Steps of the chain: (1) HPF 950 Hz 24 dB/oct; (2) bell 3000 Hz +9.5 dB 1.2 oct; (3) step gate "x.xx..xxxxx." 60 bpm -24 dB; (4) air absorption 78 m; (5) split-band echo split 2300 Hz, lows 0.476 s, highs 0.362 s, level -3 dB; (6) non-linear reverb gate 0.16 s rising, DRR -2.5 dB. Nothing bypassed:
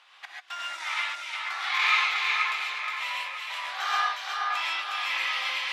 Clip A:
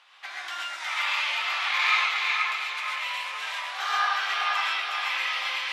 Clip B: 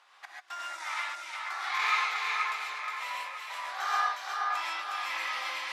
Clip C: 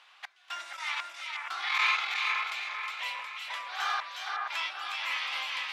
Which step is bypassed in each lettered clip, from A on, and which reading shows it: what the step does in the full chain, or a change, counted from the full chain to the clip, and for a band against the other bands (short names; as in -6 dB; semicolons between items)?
3, crest factor change -1.5 dB; 2, 4 kHz band -6.5 dB; 6, echo-to-direct 5.5 dB to -1.5 dB